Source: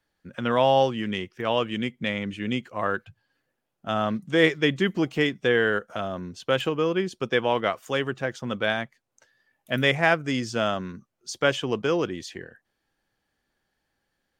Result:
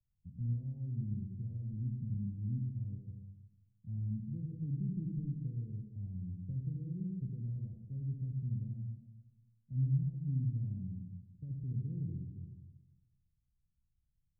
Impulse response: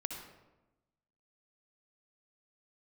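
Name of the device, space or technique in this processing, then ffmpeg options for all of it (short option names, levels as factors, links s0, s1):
club heard from the street: -filter_complex "[0:a]alimiter=limit=0.178:level=0:latency=1,lowpass=f=130:w=0.5412,lowpass=f=130:w=1.3066[s0];[1:a]atrim=start_sample=2205[s1];[s0][s1]afir=irnorm=-1:irlink=0,volume=1.58"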